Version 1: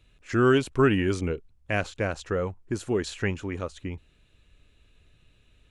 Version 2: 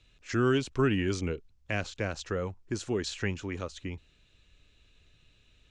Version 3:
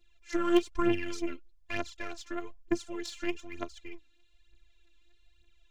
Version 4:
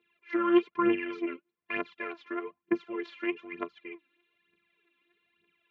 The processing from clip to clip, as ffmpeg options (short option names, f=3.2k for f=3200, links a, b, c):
-filter_complex "[0:a]lowpass=f=6.3k:w=0.5412,lowpass=f=6.3k:w=1.3066,aemphasis=mode=production:type=75kf,acrossover=split=330[a][b];[b]acompressor=threshold=-32dB:ratio=1.5[c];[a][c]amix=inputs=2:normalize=0,volume=-3.5dB"
-af "afftfilt=real='hypot(re,im)*cos(PI*b)':imag='0':win_size=512:overlap=0.75,aphaser=in_gain=1:out_gain=1:delay=3.9:decay=0.7:speed=1.1:type=triangular,aeval=exprs='0.316*(cos(1*acos(clip(val(0)/0.316,-1,1)))-cos(1*PI/2))+0.02*(cos(3*acos(clip(val(0)/0.316,-1,1)))-cos(3*PI/2))+0.00708*(cos(6*acos(clip(val(0)/0.316,-1,1)))-cos(6*PI/2))+0.0126*(cos(7*acos(clip(val(0)/0.316,-1,1)))-cos(7*PI/2))':c=same"
-filter_complex "[0:a]asplit=2[a][b];[b]asoftclip=type=tanh:threshold=-20.5dB,volume=-10.5dB[c];[a][c]amix=inputs=2:normalize=0,highpass=f=170:w=0.5412,highpass=f=170:w=1.3066,equalizer=f=180:t=q:w=4:g=9,equalizer=f=300:t=q:w=4:g=-4,equalizer=f=450:t=q:w=4:g=9,equalizer=f=690:t=q:w=4:g=-6,equalizer=f=1.1k:t=q:w=4:g=6,equalizer=f=2.2k:t=q:w=4:g=4,lowpass=f=2.8k:w=0.5412,lowpass=f=2.8k:w=1.3066"